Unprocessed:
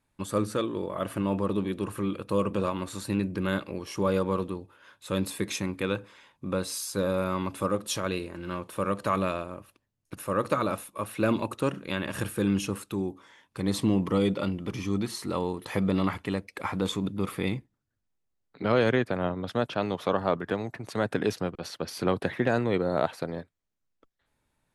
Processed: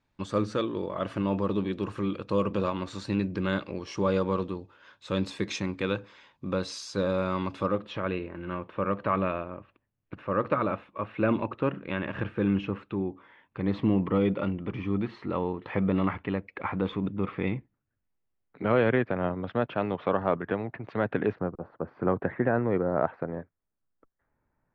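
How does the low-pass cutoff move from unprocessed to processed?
low-pass 24 dB/octave
7.51 s 5.9 kHz
7.94 s 2.7 kHz
21.19 s 2.7 kHz
21.60 s 1.1 kHz
22.18 s 1.8 kHz

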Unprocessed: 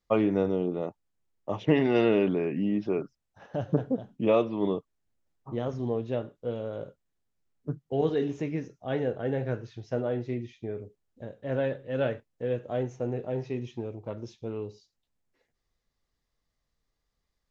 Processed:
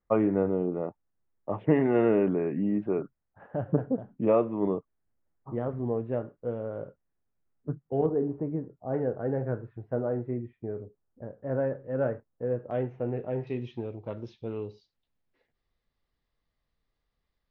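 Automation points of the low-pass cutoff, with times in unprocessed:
low-pass 24 dB/octave
1.9 kHz
from 8.06 s 1.1 kHz
from 8.94 s 1.5 kHz
from 12.71 s 2.6 kHz
from 13.47 s 4.3 kHz

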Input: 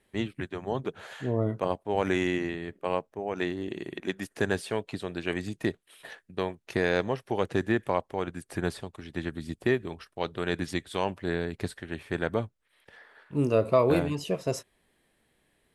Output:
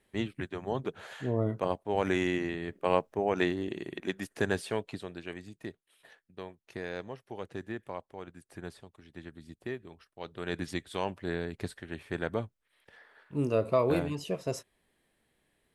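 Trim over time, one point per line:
2.45 s -2 dB
3.19 s +5 dB
3.79 s -2 dB
4.81 s -2 dB
5.43 s -12.5 dB
10.14 s -12.5 dB
10.57 s -4 dB

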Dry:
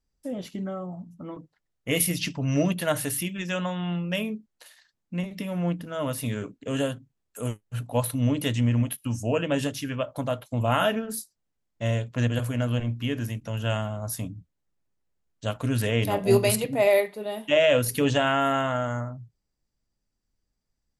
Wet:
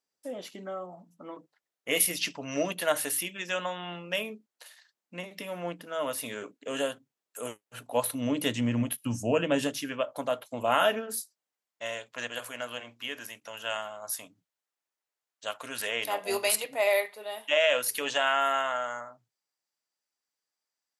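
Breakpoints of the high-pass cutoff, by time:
7.74 s 440 Hz
9.15 s 140 Hz
10.05 s 370 Hz
10.99 s 370 Hz
11.88 s 770 Hz

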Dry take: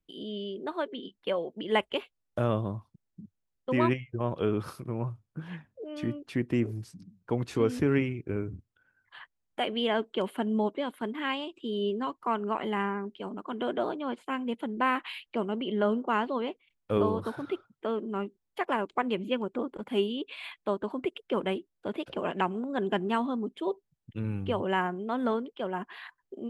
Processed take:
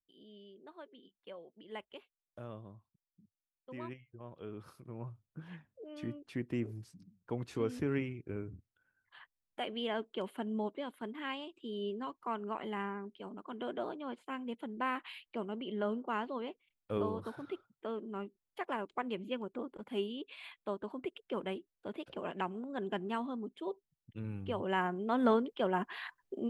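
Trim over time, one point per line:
4.36 s -19 dB
5.27 s -8.5 dB
24.41 s -8.5 dB
25.31 s +1 dB

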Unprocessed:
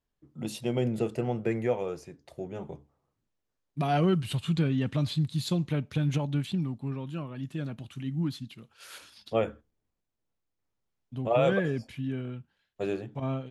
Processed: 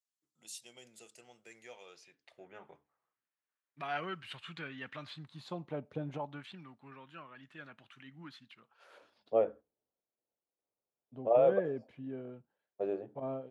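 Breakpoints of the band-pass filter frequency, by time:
band-pass filter, Q 1.6
1.49 s 7.4 kHz
2.49 s 1.7 kHz
4.97 s 1.7 kHz
5.98 s 510 Hz
6.52 s 1.6 kHz
8.52 s 1.6 kHz
8.94 s 560 Hz

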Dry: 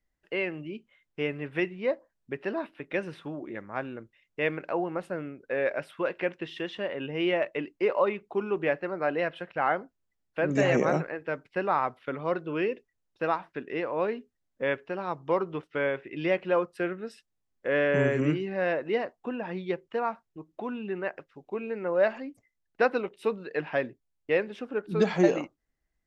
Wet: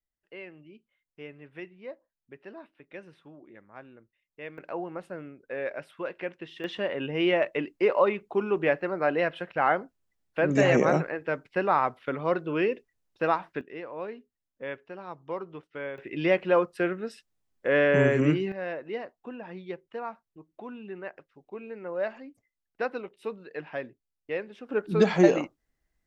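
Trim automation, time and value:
-13 dB
from 4.58 s -5 dB
from 6.64 s +2.5 dB
from 13.61 s -8 dB
from 15.98 s +3 dB
from 18.52 s -6.5 dB
from 24.69 s +3 dB

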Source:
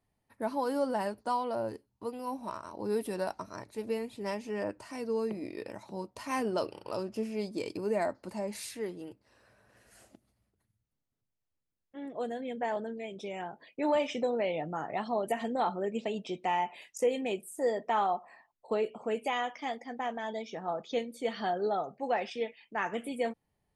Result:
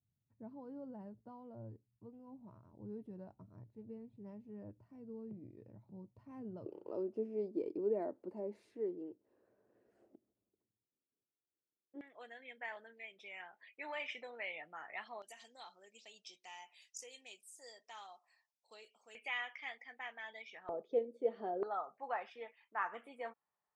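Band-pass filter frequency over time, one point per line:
band-pass filter, Q 2.6
120 Hz
from 6.66 s 370 Hz
from 12.01 s 2.1 kHz
from 15.22 s 5.6 kHz
from 19.15 s 2.2 kHz
from 20.69 s 440 Hz
from 21.63 s 1.2 kHz

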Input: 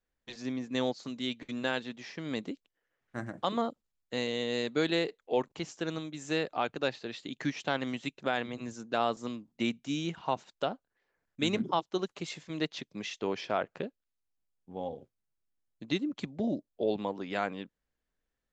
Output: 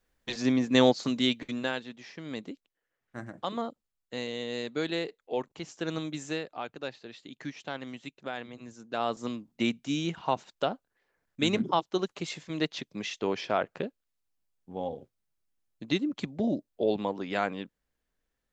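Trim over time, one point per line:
1.18 s +10 dB
1.83 s -2.5 dB
5.62 s -2.5 dB
6.14 s +6 dB
6.44 s -6 dB
8.77 s -6 dB
9.25 s +3 dB

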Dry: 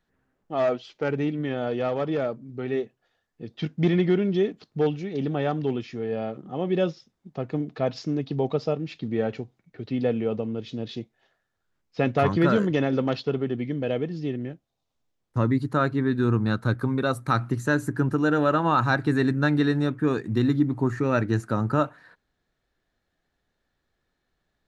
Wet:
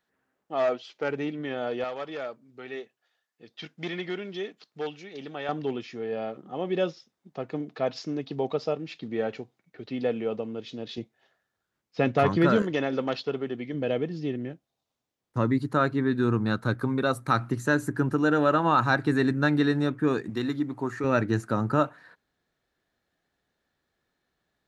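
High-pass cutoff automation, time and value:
high-pass 6 dB/octave
430 Hz
from 1.84 s 1.3 kHz
from 5.49 s 380 Hz
from 10.98 s 120 Hz
from 12.62 s 430 Hz
from 13.74 s 150 Hz
from 20.30 s 520 Hz
from 21.04 s 120 Hz

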